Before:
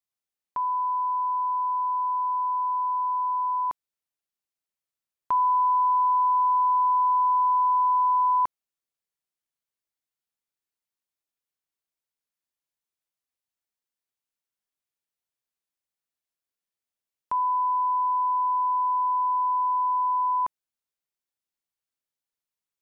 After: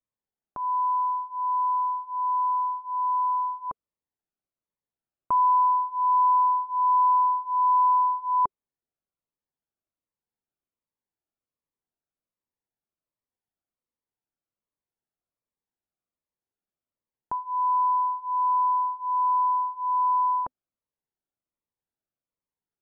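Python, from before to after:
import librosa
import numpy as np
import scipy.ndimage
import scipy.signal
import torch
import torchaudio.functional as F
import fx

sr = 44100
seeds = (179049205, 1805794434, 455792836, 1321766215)

y = scipy.signal.sosfilt(scipy.signal.butter(2, 1100.0, 'lowpass', fs=sr, output='sos'), x)
y = fx.notch_cascade(y, sr, direction='falling', hz=1.3)
y = y * 10.0 ** (5.5 / 20.0)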